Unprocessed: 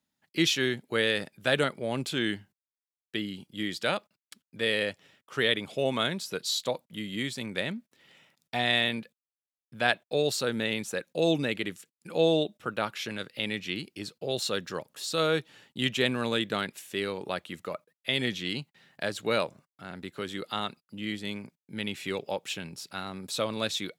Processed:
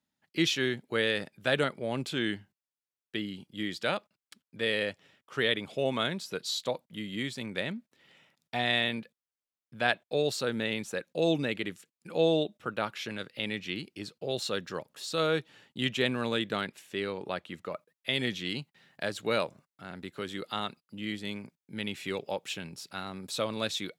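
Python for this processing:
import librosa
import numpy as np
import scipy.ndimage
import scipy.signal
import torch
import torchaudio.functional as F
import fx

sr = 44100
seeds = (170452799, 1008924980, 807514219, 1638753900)

y = fx.high_shelf(x, sr, hz=6400.0, db=fx.steps((0.0, -6.0), (16.67, -11.5), (17.74, -2.0)))
y = y * librosa.db_to_amplitude(-1.5)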